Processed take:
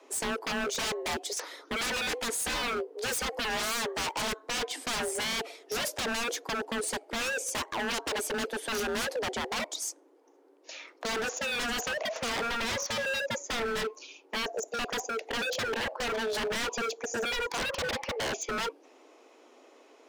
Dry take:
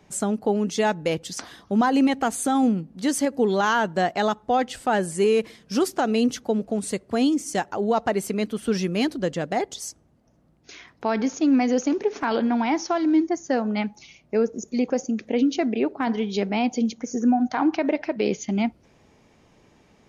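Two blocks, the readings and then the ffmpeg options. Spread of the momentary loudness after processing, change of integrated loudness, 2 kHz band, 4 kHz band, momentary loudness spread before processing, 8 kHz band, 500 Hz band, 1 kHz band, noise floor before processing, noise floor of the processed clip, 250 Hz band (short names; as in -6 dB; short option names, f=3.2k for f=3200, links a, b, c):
4 LU, -8.0 dB, +0.5 dB, +3.0 dB, 6 LU, 0.0 dB, -9.5 dB, -9.0 dB, -59 dBFS, -59 dBFS, -19.0 dB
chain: -af "afreqshift=230,aeval=exprs='0.0473*(abs(mod(val(0)/0.0473+3,4)-2)-1)':c=same"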